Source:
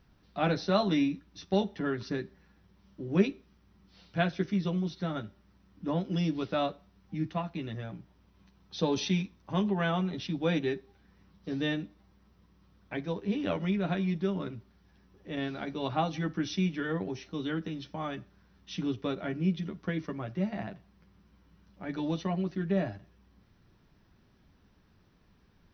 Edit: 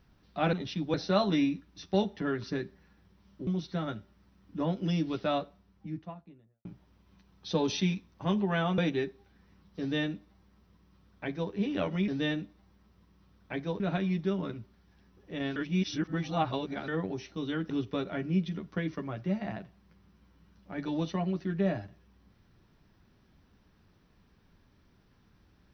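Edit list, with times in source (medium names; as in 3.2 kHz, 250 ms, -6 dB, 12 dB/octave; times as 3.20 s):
3.06–4.75 s: delete
6.54–7.93 s: studio fade out
10.06–10.47 s: move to 0.53 s
11.49–13.21 s: copy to 13.77 s
15.53–16.85 s: reverse
17.67–18.81 s: delete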